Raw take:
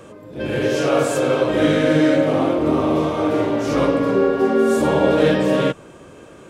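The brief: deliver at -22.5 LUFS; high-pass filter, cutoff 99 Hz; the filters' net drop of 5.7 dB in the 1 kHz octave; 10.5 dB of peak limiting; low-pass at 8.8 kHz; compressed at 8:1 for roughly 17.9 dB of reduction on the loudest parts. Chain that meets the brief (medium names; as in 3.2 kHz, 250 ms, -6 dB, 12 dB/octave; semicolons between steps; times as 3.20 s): high-pass 99 Hz; low-pass 8.8 kHz; peaking EQ 1 kHz -8 dB; compression 8:1, threshold -32 dBFS; trim +18 dB; peak limiter -14.5 dBFS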